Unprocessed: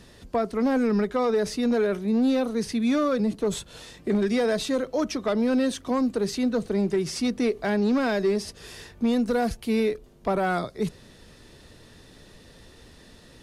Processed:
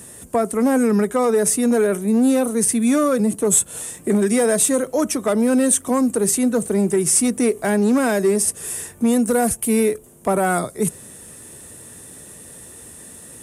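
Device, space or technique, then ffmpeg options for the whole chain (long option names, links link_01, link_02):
budget condenser microphone: -af "highpass=86,highshelf=frequency=6400:width_type=q:width=3:gain=13.5,volume=6dB"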